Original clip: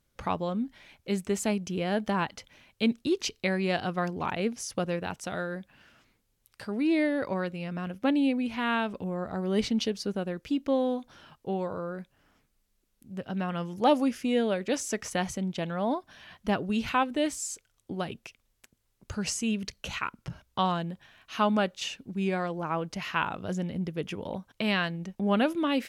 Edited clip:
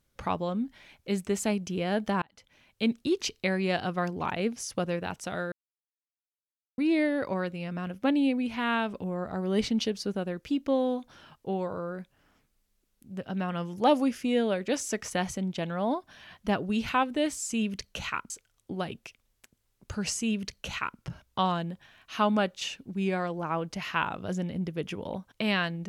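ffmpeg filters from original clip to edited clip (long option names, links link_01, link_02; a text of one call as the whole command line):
ffmpeg -i in.wav -filter_complex "[0:a]asplit=6[link_01][link_02][link_03][link_04][link_05][link_06];[link_01]atrim=end=2.22,asetpts=PTS-STARTPTS,afade=type=out:start_time=2.216:duration=0.004:curve=hsin[link_07];[link_02]atrim=start=2.22:end=5.52,asetpts=PTS-STARTPTS,afade=type=in:duration=0.94:curve=qsin,afade=type=out:start_time=3.296:duration=0.004:curve=hsin[link_08];[link_03]atrim=start=5.52:end=6.78,asetpts=PTS-STARTPTS,volume=0[link_09];[link_04]atrim=start=6.78:end=17.502,asetpts=PTS-STARTPTS,afade=type=in:duration=0.004:curve=hsin[link_10];[link_05]atrim=start=19.388:end=20.192[link_11];[link_06]atrim=start=17.498[link_12];[link_07][link_08][link_09][link_10]concat=n=4:v=0:a=1[link_13];[link_13][link_11]acrossfade=duration=0.004:curve1=hsin:curve2=hsin[link_14];[link_14][link_12]acrossfade=duration=0.004:curve1=hsin:curve2=hsin" out.wav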